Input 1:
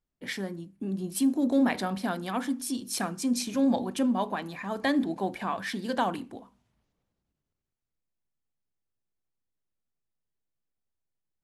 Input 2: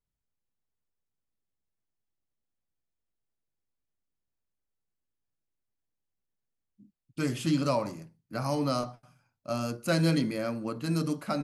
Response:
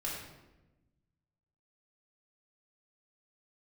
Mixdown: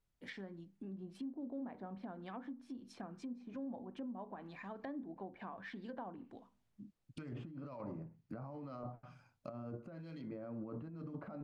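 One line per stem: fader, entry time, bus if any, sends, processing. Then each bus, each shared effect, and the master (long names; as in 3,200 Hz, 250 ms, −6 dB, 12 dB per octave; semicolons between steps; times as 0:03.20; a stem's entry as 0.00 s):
−11.5 dB, 0.00 s, no send, de-essing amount 50%; high-shelf EQ 4,800 Hz +3.5 dB
−3.5 dB, 0.00 s, no send, compressor whose output falls as the input rises −38 dBFS, ratio −1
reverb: not used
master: treble cut that deepens with the level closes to 1,000 Hz, closed at −37.5 dBFS; high-shelf EQ 6,200 Hz −6 dB; downward compressor 2.5 to 1, threshold −45 dBFS, peak gain reduction 9.5 dB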